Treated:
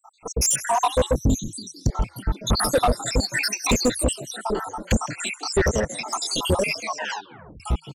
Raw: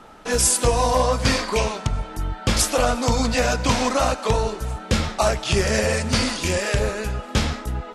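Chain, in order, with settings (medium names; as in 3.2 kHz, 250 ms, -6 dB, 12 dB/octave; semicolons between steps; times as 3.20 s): random holes in the spectrogram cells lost 84%; 3.41–4.16 s: FFT filter 220 Hz 0 dB, 380 Hz +7 dB, 970 Hz -11 dB, 7.6 kHz +10 dB; 5.69–6.27 s: compression 2:1, threshold -30 dBFS, peak gain reduction 7 dB; frequency-shifting echo 162 ms, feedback 56%, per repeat +77 Hz, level -20.5 dB; level rider gain up to 7.5 dB; 1.15–1.89 s: inverse Chebyshev band-stop 800–1800 Hz, stop band 70 dB; saturation -15 dBFS, distortion -10 dB; 6.80 s: tape stop 0.80 s; trim +2 dB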